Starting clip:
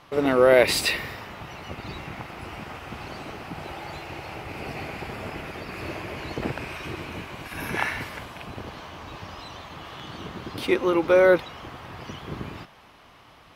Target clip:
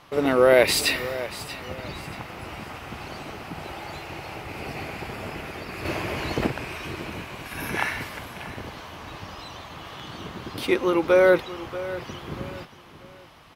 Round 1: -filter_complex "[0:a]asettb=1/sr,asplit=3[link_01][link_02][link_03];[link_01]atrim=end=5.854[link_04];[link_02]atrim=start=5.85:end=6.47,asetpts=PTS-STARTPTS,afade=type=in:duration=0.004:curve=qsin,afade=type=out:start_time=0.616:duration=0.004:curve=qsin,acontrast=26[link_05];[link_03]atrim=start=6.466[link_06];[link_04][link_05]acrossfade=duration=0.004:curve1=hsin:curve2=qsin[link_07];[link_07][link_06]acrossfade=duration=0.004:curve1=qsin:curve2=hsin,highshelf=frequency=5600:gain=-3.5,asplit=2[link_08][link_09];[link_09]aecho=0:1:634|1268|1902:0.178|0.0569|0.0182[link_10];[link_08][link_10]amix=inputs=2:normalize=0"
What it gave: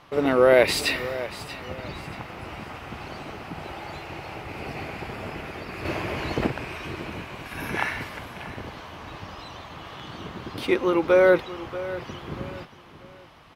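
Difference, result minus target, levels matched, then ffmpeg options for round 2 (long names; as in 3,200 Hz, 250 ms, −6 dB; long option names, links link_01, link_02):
8,000 Hz band −5.0 dB
-filter_complex "[0:a]asettb=1/sr,asplit=3[link_01][link_02][link_03];[link_01]atrim=end=5.854[link_04];[link_02]atrim=start=5.85:end=6.47,asetpts=PTS-STARTPTS,afade=type=in:duration=0.004:curve=qsin,afade=type=out:start_time=0.616:duration=0.004:curve=qsin,acontrast=26[link_05];[link_03]atrim=start=6.466[link_06];[link_04][link_05]acrossfade=duration=0.004:curve1=hsin:curve2=qsin[link_07];[link_07][link_06]acrossfade=duration=0.004:curve1=qsin:curve2=hsin,highshelf=frequency=5600:gain=4,asplit=2[link_08][link_09];[link_09]aecho=0:1:634|1268|1902:0.178|0.0569|0.0182[link_10];[link_08][link_10]amix=inputs=2:normalize=0"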